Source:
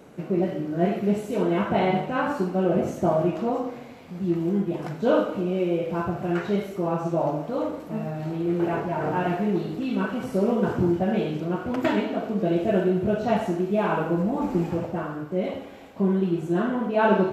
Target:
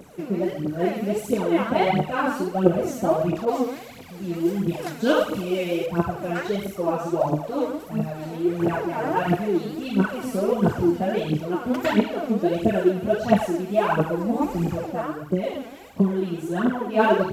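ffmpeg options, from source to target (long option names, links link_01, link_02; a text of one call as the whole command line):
ffmpeg -i in.wav -filter_complex "[0:a]highshelf=frequency=6600:gain=10,aphaser=in_gain=1:out_gain=1:delay=4.6:decay=0.71:speed=1.5:type=triangular,asettb=1/sr,asplit=3[link_01][link_02][link_03];[link_01]atrim=end=3.454[link_04];[link_02]atrim=start=3.45:end=5.86,asetpts=PTS-STARTPTS,afade=type=in:duration=0.004:curve=qsin,afade=type=out:start_time=2.406:duration=0.004:curve=qsin,adynamicequalizer=threshold=0.0126:dfrequency=1900:dqfactor=0.7:tfrequency=1900:tqfactor=0.7:attack=5:release=100:ratio=0.375:range=3.5:mode=boostabove:tftype=highshelf[link_05];[link_03]atrim=start=5.856[link_06];[link_04][link_05]acrossfade=duration=0.004:curve1=hsin:curve2=qsin[link_07];[link_07][link_06]acrossfade=duration=0.004:curve1=qsin:curve2=hsin,volume=-1dB" out.wav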